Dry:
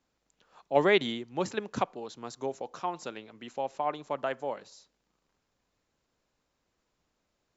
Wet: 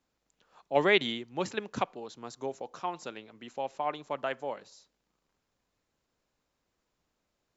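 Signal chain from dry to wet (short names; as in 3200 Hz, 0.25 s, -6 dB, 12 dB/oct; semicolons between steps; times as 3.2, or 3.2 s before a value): dynamic EQ 2700 Hz, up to +5 dB, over -44 dBFS, Q 0.89; gain -2 dB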